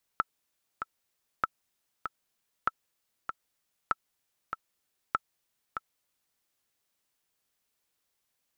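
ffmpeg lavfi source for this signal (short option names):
-f lavfi -i "aevalsrc='pow(10,(-12-8*gte(mod(t,2*60/97),60/97))/20)*sin(2*PI*1320*mod(t,60/97))*exp(-6.91*mod(t,60/97)/0.03)':d=6.18:s=44100"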